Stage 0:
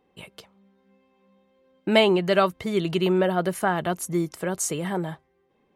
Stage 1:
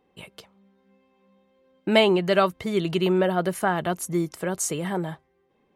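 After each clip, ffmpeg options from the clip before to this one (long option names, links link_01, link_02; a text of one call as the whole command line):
ffmpeg -i in.wav -af anull out.wav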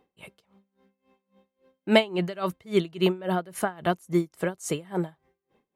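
ffmpeg -i in.wav -af "aeval=exprs='val(0)*pow(10,-24*(0.5-0.5*cos(2*PI*3.6*n/s))/20)':channel_layout=same,volume=2.5dB" out.wav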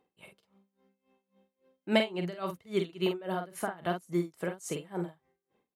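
ffmpeg -i in.wav -filter_complex "[0:a]lowshelf=frequency=61:gain=-9.5,asplit=2[link_01][link_02];[link_02]adelay=46,volume=-6dB[link_03];[link_01][link_03]amix=inputs=2:normalize=0,volume=-7dB" out.wav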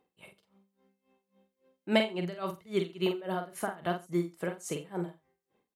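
ffmpeg -i in.wav -af "aecho=1:1:87:0.0944" out.wav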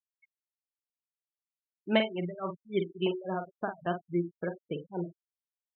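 ffmpeg -i in.wav -af "afftfilt=real='re*gte(hypot(re,im),0.0224)':imag='im*gte(hypot(re,im),0.0224)':win_size=1024:overlap=0.75,aresample=8000,aresample=44100" out.wav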